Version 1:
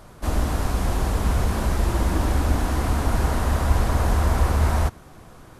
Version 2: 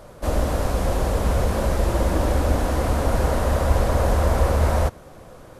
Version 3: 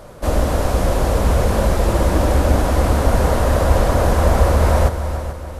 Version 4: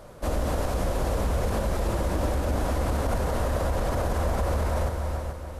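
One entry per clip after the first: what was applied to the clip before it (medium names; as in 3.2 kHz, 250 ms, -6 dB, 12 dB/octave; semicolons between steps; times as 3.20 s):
peaking EQ 540 Hz +11 dB 0.5 oct
multi-head delay 145 ms, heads second and third, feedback 42%, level -12.5 dB; trim +4.5 dB
peak limiter -10.5 dBFS, peak gain reduction 9 dB; trim -7 dB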